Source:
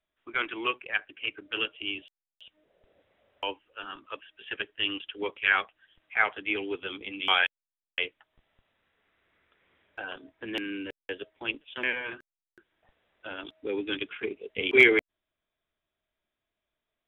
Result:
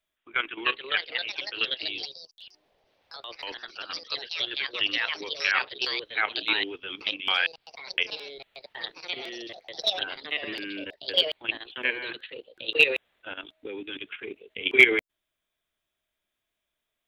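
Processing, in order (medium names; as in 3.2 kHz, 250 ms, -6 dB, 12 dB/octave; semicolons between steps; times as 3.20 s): treble shelf 2.1 kHz +9 dB; level held to a coarse grid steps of 12 dB; ever faster or slower copies 358 ms, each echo +3 st, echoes 3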